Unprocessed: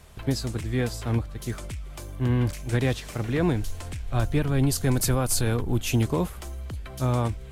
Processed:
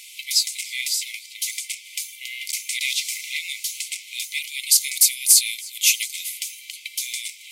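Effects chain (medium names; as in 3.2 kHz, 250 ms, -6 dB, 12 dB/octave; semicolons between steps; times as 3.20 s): dynamic bell 2.7 kHz, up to -6 dB, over -51 dBFS, Q 2; brick-wall FIR high-pass 2 kHz; on a send: tape echo 307 ms, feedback 60%, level -22 dB, low-pass 5.6 kHz; on the sum: loudness maximiser +18 dB; trim -1 dB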